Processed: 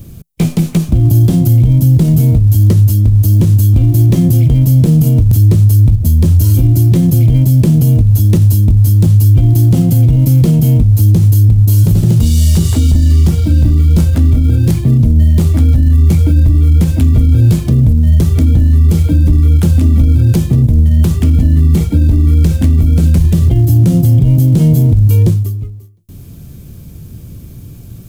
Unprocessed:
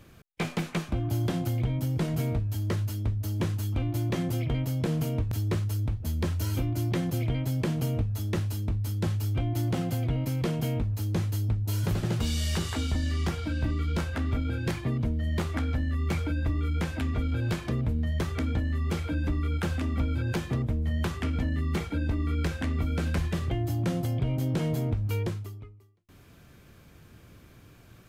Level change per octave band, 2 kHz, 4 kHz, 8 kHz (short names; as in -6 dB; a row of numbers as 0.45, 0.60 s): n/a, +8.5 dB, +16.0 dB